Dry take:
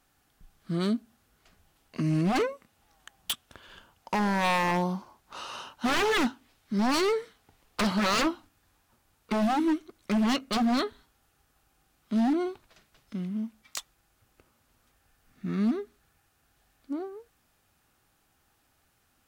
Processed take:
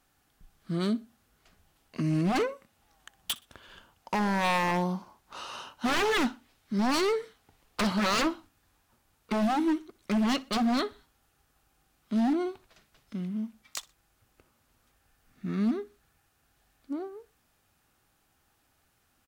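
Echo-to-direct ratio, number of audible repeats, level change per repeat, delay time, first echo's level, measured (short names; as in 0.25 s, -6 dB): -21.5 dB, 2, -10.0 dB, 61 ms, -22.0 dB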